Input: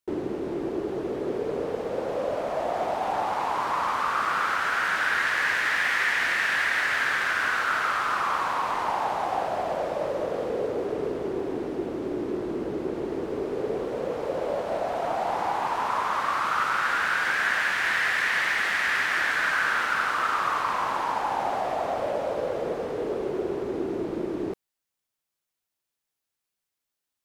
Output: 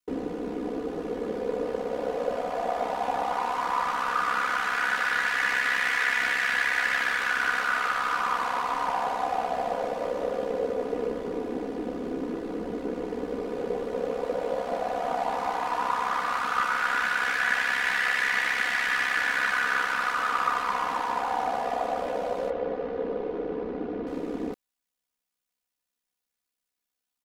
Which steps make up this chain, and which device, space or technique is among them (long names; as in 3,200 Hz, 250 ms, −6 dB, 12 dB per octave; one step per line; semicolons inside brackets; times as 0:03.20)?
0:22.50–0:24.07: high-frequency loss of the air 250 metres
ring-modulated robot voice (ring modulation 33 Hz; comb filter 4.1 ms, depth 77%)